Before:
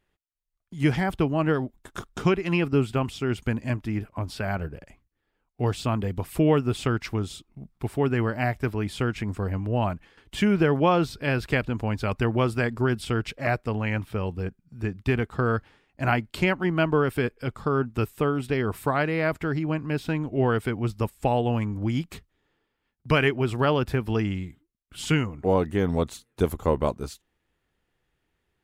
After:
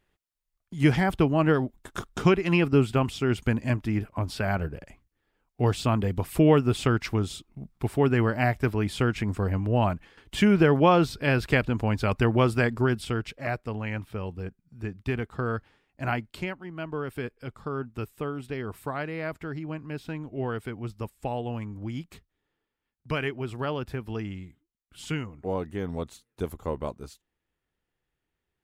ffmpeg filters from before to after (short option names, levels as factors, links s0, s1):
-af "volume=2.99,afade=t=out:st=12.63:d=0.7:silence=0.473151,afade=t=out:st=16.21:d=0.43:silence=0.281838,afade=t=in:st=16.64:d=0.56:silence=0.398107"